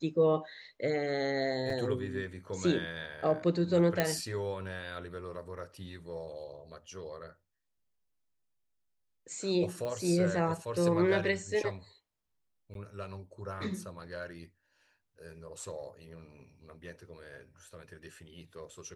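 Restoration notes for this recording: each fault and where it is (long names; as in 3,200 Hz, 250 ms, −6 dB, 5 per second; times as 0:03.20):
0:01.70: drop-out 2 ms
0:04.00: click −12 dBFS
0:09.85: click −26 dBFS
0:12.74–0:12.75: drop-out 12 ms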